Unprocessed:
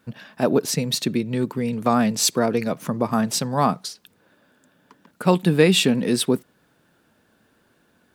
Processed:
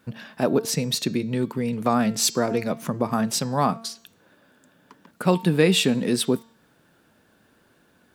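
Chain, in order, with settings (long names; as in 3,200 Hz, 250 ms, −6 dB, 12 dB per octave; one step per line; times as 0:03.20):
hum removal 227.1 Hz, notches 35
in parallel at −3 dB: downward compressor, threshold −31 dBFS, peak gain reduction 19 dB
on the sum: level −3 dB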